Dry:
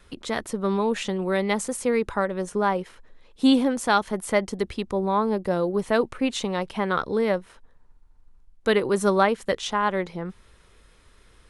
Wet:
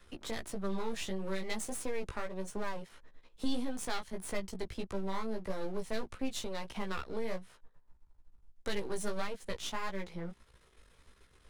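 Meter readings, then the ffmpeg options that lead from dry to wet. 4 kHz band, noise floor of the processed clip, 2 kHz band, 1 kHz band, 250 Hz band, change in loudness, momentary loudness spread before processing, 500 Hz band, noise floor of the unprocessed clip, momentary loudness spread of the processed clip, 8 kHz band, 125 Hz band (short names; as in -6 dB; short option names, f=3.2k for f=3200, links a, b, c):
-10.5 dB, -65 dBFS, -14.0 dB, -17.0 dB, -15.0 dB, -15.0 dB, 9 LU, -15.5 dB, -56 dBFS, 5 LU, -8.0 dB, -12.5 dB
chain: -filter_complex "[0:a]aeval=exprs='if(lt(val(0),0),0.251*val(0),val(0))':c=same,asplit=2[a][b];[b]alimiter=limit=-16dB:level=0:latency=1:release=410,volume=2.5dB[c];[a][c]amix=inputs=2:normalize=0,flanger=delay=15:depth=3:speed=1.6,acrossover=split=160|3000[d][e][f];[e]acompressor=threshold=-32dB:ratio=2.5[g];[d][g][f]amix=inputs=3:normalize=0,volume=-8dB"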